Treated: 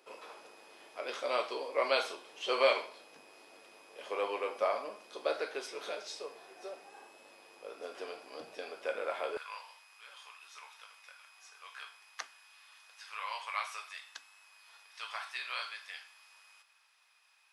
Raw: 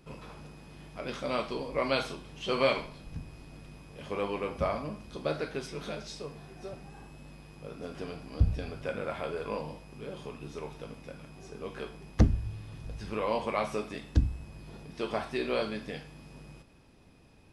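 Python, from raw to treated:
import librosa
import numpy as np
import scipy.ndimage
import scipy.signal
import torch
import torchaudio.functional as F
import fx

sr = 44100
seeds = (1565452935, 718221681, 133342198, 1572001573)

y = fx.highpass(x, sr, hz=fx.steps((0.0, 420.0), (9.37, 1100.0)), slope=24)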